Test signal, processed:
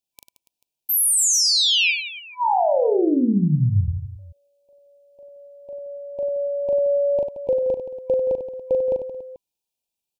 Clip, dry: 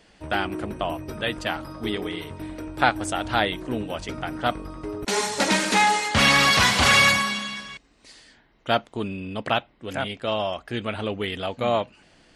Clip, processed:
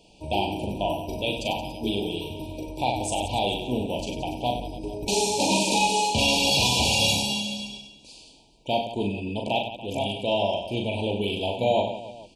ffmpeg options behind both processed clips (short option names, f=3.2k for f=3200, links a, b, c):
-af "afftfilt=real='re*(1-between(b*sr/4096,1000,2300))':imag='im*(1-between(b*sr/4096,1000,2300))':win_size=4096:overlap=0.75,alimiter=limit=-14.5dB:level=0:latency=1:release=14,aecho=1:1:40|96|174.4|284.2|437.8:0.631|0.398|0.251|0.158|0.1"